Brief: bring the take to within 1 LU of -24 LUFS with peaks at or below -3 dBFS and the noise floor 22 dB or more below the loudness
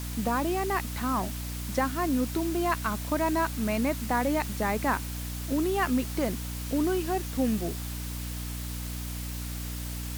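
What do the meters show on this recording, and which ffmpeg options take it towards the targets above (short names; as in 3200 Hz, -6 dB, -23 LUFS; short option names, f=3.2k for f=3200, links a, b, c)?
hum 60 Hz; harmonics up to 300 Hz; hum level -33 dBFS; noise floor -35 dBFS; noise floor target -52 dBFS; loudness -29.5 LUFS; peak -13.0 dBFS; loudness target -24.0 LUFS
-> -af "bandreject=f=60:t=h:w=6,bandreject=f=120:t=h:w=6,bandreject=f=180:t=h:w=6,bandreject=f=240:t=h:w=6,bandreject=f=300:t=h:w=6"
-af "afftdn=nr=17:nf=-35"
-af "volume=5.5dB"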